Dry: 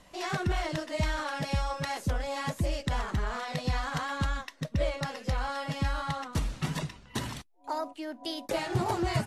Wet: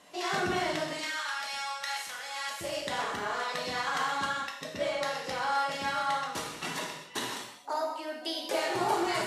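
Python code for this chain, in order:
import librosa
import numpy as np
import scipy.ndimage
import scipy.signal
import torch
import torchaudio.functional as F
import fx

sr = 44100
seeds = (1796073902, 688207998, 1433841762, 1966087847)

y = fx.highpass(x, sr, hz=fx.steps((0.0, 250.0), (0.93, 1400.0), (2.61, 410.0)), slope=12)
y = fx.rev_gated(y, sr, seeds[0], gate_ms=300, shape='falling', drr_db=-1.5)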